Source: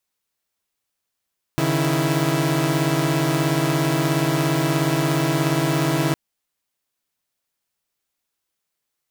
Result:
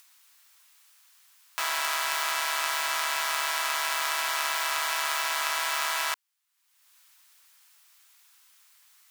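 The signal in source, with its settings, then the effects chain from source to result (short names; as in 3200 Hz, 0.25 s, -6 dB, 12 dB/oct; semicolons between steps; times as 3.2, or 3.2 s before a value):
chord C#3/D#3/E4 saw, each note -20 dBFS 4.56 s
HPF 970 Hz 24 dB/oct; upward compressor, threshold -42 dBFS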